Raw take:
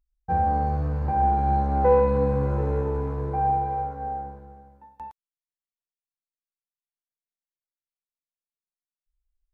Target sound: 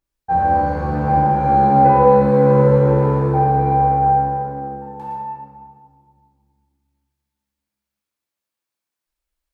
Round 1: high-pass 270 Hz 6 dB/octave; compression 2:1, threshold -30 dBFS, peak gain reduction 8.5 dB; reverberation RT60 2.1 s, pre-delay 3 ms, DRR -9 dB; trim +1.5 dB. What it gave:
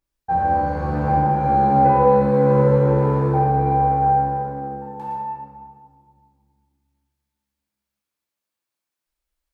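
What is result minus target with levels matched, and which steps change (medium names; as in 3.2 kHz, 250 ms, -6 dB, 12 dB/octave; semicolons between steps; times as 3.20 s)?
compression: peak gain reduction +3.5 dB
change: compression 2:1, threshold -23.5 dBFS, peak gain reduction 5 dB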